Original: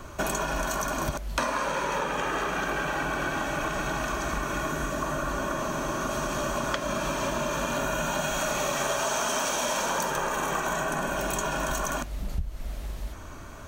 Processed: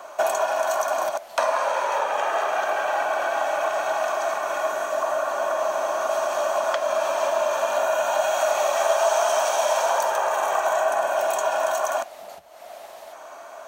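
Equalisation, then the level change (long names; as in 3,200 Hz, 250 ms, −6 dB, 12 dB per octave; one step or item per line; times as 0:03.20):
high-pass with resonance 680 Hz, resonance Q 4.9
0.0 dB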